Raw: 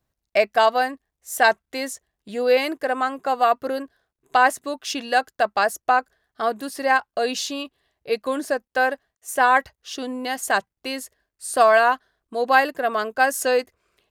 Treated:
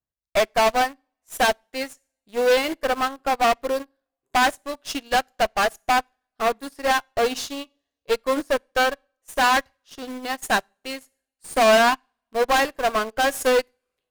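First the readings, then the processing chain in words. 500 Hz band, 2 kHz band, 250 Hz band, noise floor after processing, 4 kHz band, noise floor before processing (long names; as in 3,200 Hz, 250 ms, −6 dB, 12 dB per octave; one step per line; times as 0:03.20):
0.0 dB, −1.5 dB, +0.5 dB, below −85 dBFS, +3.0 dB, −84 dBFS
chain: tube saturation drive 25 dB, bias 0.55
coupled-rooms reverb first 0.46 s, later 2.2 s, from −27 dB, DRR 13.5 dB
in parallel at −7 dB: bit reduction 5 bits
on the sum: expander for the loud parts 2.5 to 1, over −36 dBFS
level +8 dB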